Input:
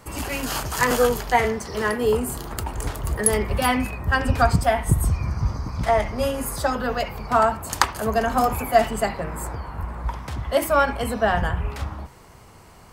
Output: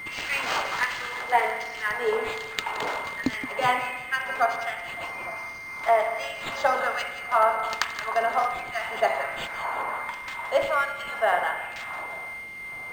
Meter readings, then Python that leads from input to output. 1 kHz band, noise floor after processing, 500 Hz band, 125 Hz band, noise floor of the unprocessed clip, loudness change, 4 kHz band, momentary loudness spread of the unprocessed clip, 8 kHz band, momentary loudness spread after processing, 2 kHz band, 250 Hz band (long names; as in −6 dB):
−2.0 dB, −37 dBFS, −5.0 dB, −24.0 dB, −47 dBFS, −4.0 dB, −2.0 dB, 11 LU, −13.0 dB, 10 LU, +1.0 dB, −13.0 dB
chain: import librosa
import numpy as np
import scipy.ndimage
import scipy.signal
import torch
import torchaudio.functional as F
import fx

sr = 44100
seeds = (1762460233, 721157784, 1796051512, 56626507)

y = fx.high_shelf(x, sr, hz=6600.0, db=-11.0)
y = fx.rider(y, sr, range_db=10, speed_s=0.5)
y = fx.echo_split(y, sr, split_hz=1100.0, low_ms=300, high_ms=173, feedback_pct=52, wet_db=-11.5)
y = y + 10.0 ** (-35.0 / 20.0) * np.sin(2.0 * np.pi * 2100.0 * np.arange(len(y)) / sr)
y = fx.filter_lfo_highpass(y, sr, shape='sine', hz=1.3, low_hz=500.0, high_hz=2400.0, q=0.89)
y = fx.peak_eq(y, sr, hz=14000.0, db=9.0, octaves=0.37)
y = fx.rev_spring(y, sr, rt60_s=1.2, pass_ms=(36, 45), chirp_ms=70, drr_db=7.0)
y = fx.dmg_noise_colour(y, sr, seeds[0], colour='brown', level_db=-40.0)
y = fx.highpass(y, sr, hz=360.0, slope=6)
y = np.interp(np.arange(len(y)), np.arange(len(y))[::4], y[::4])